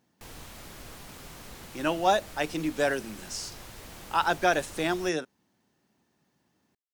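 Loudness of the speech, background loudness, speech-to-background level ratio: -28.5 LUFS, -45.0 LUFS, 16.5 dB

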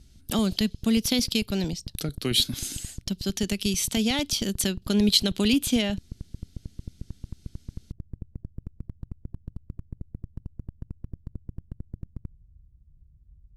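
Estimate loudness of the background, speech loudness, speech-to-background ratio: -43.0 LUFS, -25.5 LUFS, 17.5 dB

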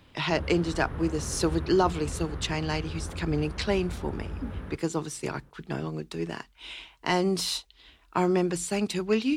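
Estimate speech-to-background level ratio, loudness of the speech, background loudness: 9.0 dB, -29.0 LUFS, -38.0 LUFS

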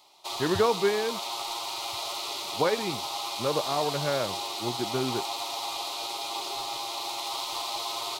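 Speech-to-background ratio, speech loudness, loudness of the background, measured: 2.5 dB, -29.5 LUFS, -32.0 LUFS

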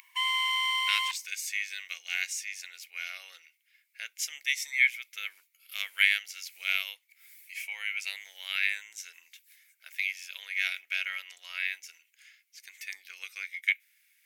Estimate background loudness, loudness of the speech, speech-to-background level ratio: -27.5 LUFS, -31.5 LUFS, -4.0 dB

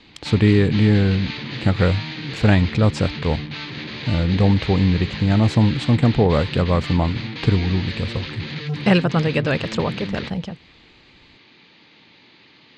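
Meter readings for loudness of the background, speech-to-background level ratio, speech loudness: -30.0 LUFS, 10.0 dB, -20.0 LUFS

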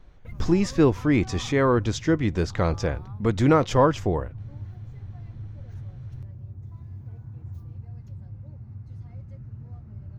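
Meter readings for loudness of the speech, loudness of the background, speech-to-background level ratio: -23.0 LUFS, -40.5 LUFS, 17.5 dB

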